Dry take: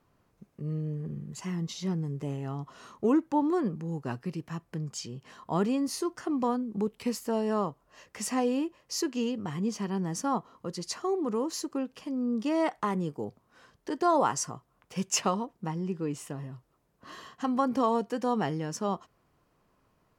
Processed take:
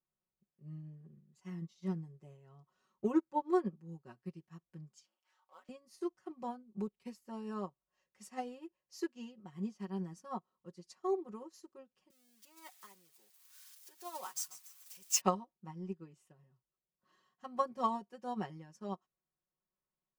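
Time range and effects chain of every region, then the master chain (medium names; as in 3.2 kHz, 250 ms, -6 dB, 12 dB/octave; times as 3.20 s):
5.04–5.69 s: companding laws mixed up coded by mu + high-pass 710 Hz 24 dB/octave + ring modulator 150 Hz
12.10–15.21 s: zero-crossing glitches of -25 dBFS + high-pass 1.4 kHz 6 dB/octave + feedback echo behind a high-pass 144 ms, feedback 59%, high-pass 4.1 kHz, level -6 dB
whole clip: comb 5.4 ms, depth 87%; upward expansion 2.5:1, over -36 dBFS; trim -4.5 dB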